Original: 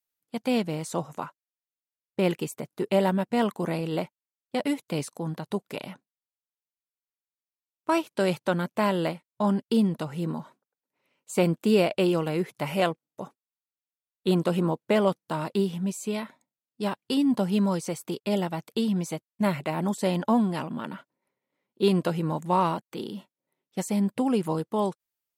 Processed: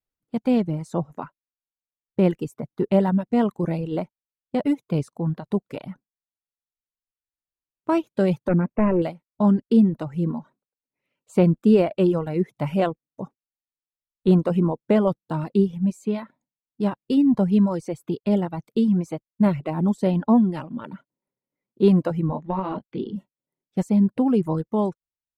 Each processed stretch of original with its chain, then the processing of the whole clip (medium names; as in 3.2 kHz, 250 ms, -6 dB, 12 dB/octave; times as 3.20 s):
8.48–9.02 s: dynamic bell 390 Hz, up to +5 dB, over -36 dBFS, Q 0.81 + hard clipper -19.5 dBFS + careless resampling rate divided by 8×, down none, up filtered
22.27–23.16 s: inverse Chebyshev low-pass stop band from 9.9 kHz, stop band 50 dB + doubling 21 ms -6 dB + compression 10:1, threshold -22 dBFS
whole clip: reverb removal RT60 1.2 s; tilt EQ -3.5 dB/octave